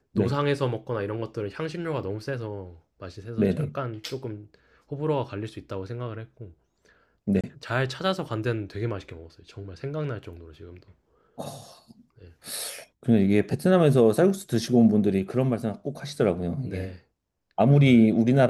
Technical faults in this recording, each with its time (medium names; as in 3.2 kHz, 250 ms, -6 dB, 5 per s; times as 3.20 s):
7.41–7.44 s: dropout 26 ms